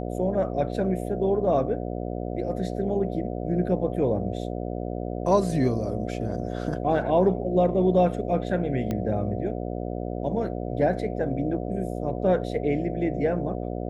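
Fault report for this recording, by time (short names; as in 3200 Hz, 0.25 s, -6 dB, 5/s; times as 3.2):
buzz 60 Hz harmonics 12 -31 dBFS
8.91 pop -16 dBFS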